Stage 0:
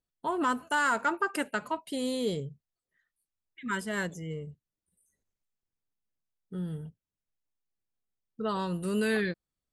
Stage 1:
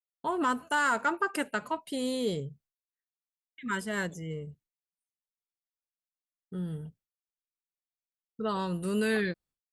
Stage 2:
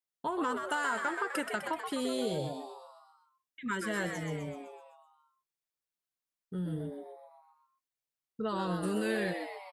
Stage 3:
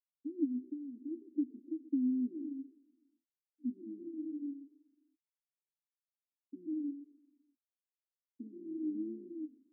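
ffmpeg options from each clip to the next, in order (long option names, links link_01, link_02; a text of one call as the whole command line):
ffmpeg -i in.wav -af "agate=range=-33dB:threshold=-56dB:ratio=3:detection=peak" out.wav
ffmpeg -i in.wav -filter_complex "[0:a]acompressor=threshold=-30dB:ratio=6,asplit=2[link_01][link_02];[link_02]asplit=7[link_03][link_04][link_05][link_06][link_07][link_08][link_09];[link_03]adelay=127,afreqshift=130,volume=-6dB[link_10];[link_04]adelay=254,afreqshift=260,volume=-11.2dB[link_11];[link_05]adelay=381,afreqshift=390,volume=-16.4dB[link_12];[link_06]adelay=508,afreqshift=520,volume=-21.6dB[link_13];[link_07]adelay=635,afreqshift=650,volume=-26.8dB[link_14];[link_08]adelay=762,afreqshift=780,volume=-32dB[link_15];[link_09]adelay=889,afreqshift=910,volume=-37.2dB[link_16];[link_10][link_11][link_12][link_13][link_14][link_15][link_16]amix=inputs=7:normalize=0[link_17];[link_01][link_17]amix=inputs=2:normalize=0" out.wav
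ffmpeg -i in.wav -af "acrusher=bits=7:dc=4:mix=0:aa=0.000001,asuperpass=centerf=280:order=8:qfactor=3.2,volume=5dB" out.wav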